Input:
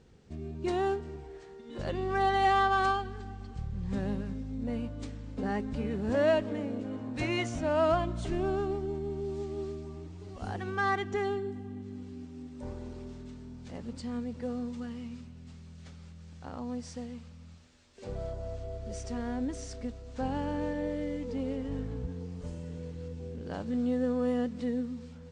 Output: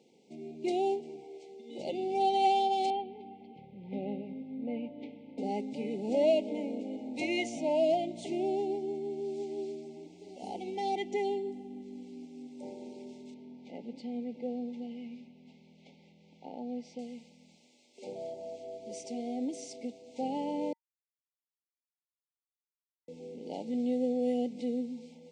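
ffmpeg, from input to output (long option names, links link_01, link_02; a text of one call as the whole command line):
ffmpeg -i in.wav -filter_complex "[0:a]asettb=1/sr,asplit=3[link_01][link_02][link_03];[link_01]atrim=end=2.904[link_04];[link_02]atrim=start=2.9:end=5.38,asetpts=PTS-STARTPTS,afade=type=in:duration=0.004:curve=qsin,afade=type=out:start_time=2.476:duration=0.004:curve=qsin,lowpass=frequency=3000:width=0.5412,lowpass=frequency=3000:width=1.3066[link_05];[link_03]atrim=start=5.376[link_06];[link_04][link_05]acrossfade=duration=0.004:curve1=hsin:curve2=qsin[link_07];[link_07][link_06]acrossfade=duration=0.004:curve1=qsin:curve2=hsin,asettb=1/sr,asplit=3[link_08][link_09][link_10];[link_08]atrim=end=13.344[link_11];[link_09]atrim=start=13.34:end=16.99,asetpts=PTS-STARTPTS,afade=type=in:duration=0.004:curve=qsin,afade=type=out:start_time=3.646:duration=0.004:curve=qsin,lowpass=3300[link_12];[link_10]atrim=start=16.986[link_13];[link_11][link_12]acrossfade=duration=0.004:curve1=hsin:curve2=qsin[link_14];[link_14][link_13]acrossfade=duration=0.004:curve1=qsin:curve2=hsin,asplit=3[link_15][link_16][link_17];[link_15]atrim=end=20.73,asetpts=PTS-STARTPTS,afade=type=out:start_time=20.726:duration=0.004:curve=hsin[link_18];[link_16]atrim=start=20.73:end=23.08,asetpts=PTS-STARTPTS,volume=0[link_19];[link_17]atrim=start=23.08,asetpts=PTS-STARTPTS,afade=type=in:duration=0.004:curve=hsin[link_20];[link_18][link_19][link_20]concat=n=3:v=0:a=1,highpass=frequency=220:width=0.5412,highpass=frequency=220:width=1.3066,afftfilt=real='re*(1-between(b*sr/4096,920,2000))':imag='im*(1-between(b*sr/4096,920,2000))':win_size=4096:overlap=0.75" out.wav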